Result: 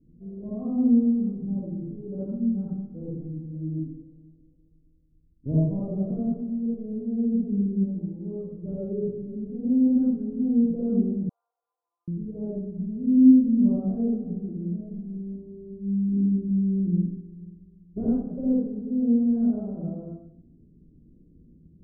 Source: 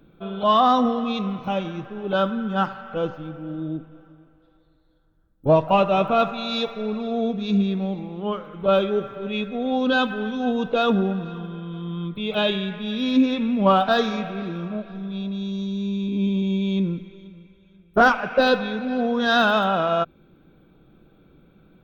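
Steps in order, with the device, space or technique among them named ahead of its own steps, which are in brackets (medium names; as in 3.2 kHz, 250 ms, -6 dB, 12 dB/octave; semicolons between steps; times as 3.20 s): next room (low-pass 320 Hz 24 dB/octave; reverberation RT60 0.65 s, pre-delay 47 ms, DRR -7.5 dB); 11.29–12.08 s: steep high-pass 840 Hz 48 dB/octave; trim -6.5 dB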